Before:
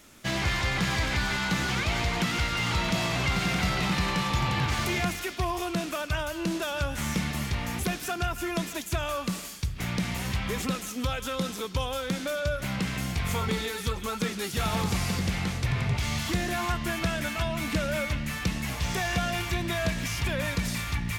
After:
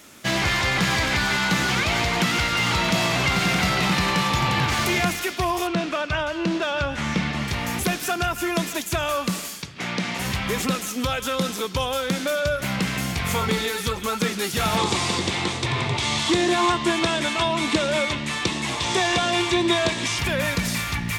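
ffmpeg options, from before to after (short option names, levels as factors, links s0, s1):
-filter_complex "[0:a]asettb=1/sr,asplit=3[s0][s1][s2];[s0]atrim=end=5.674[s3];[s1]atrim=start=5.67:end=7.48,asetpts=PTS-STARTPTS,afade=t=in:d=0.004:c=qsin,afade=t=out:st=1.806:d=0.004:c=qsin,lowpass=4200[s4];[s2]atrim=start=7.476[s5];[s3][s4]acrossfade=d=0.004:c1=hsin:c2=qsin[s6];[s6][s5]acrossfade=d=0.004:c1=qsin:c2=hsin,asplit=3[s7][s8][s9];[s7]afade=t=out:st=9.62:d=0.02[s10];[s8]highpass=200,lowpass=6000,afade=t=in:st=9.62:d=0.02,afade=t=out:st=10.18:d=0.02[s11];[s9]afade=t=in:st=10.18:d=0.02[s12];[s10][s11][s12]amix=inputs=3:normalize=0,asettb=1/sr,asplit=3[s13][s14][s15];[s13]atrim=end=14.774[s16];[s14]atrim=start=14.77:end=20.19,asetpts=PTS-STARTPTS,afade=t=in:d=0.004:c=qsin,afade=t=out:st=5.416:d=0.004:c=qsin,highpass=100,equalizer=f=180:t=q:w=4:g=-8,equalizer=f=350:t=q:w=4:g=9,equalizer=f=990:t=q:w=4:g=7,equalizer=f=1500:t=q:w=4:g=-4,equalizer=f=3600:t=q:w=4:g=7,equalizer=f=8300:t=q:w=4:g=4,lowpass=f=9000:w=0.5412,lowpass=f=9000:w=1.3066[s17];[s15]atrim=start=20.186[s18];[s16][s17]acrossfade=d=0.004:c1=hsin:c2=qsin[s19];[s19][s18]acrossfade=d=0.004:c1=qsin:c2=hsin,highpass=f=150:p=1,volume=2.24"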